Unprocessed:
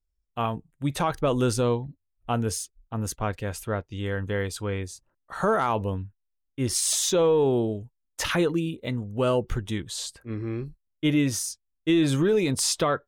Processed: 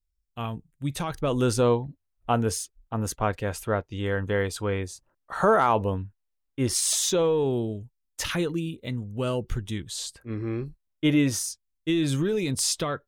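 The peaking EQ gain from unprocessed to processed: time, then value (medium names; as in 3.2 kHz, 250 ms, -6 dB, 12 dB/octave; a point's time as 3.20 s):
peaking EQ 790 Hz 2.8 oct
1.03 s -8 dB
1.63 s +4 dB
6.60 s +4 dB
7.63 s -6.5 dB
9.82 s -6.5 dB
10.48 s +2.5 dB
11.38 s +2.5 dB
11.95 s -6.5 dB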